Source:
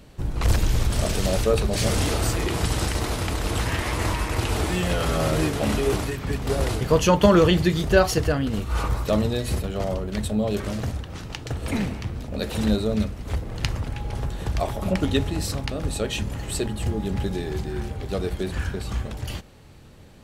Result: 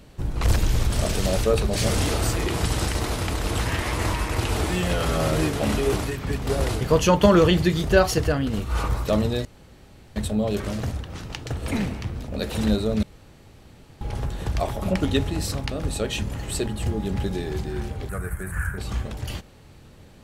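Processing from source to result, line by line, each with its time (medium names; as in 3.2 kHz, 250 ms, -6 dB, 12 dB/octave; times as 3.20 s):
9.45–10.16 s: room tone
13.03–14.01 s: room tone
18.09–18.78 s: FFT filter 160 Hz 0 dB, 240 Hz -12 dB, 810 Hz -7 dB, 1.5 kHz +8 dB, 2.1 kHz -1 dB, 3.5 kHz -23 dB, 5.2 kHz -18 dB, 8.9 kHz +9 dB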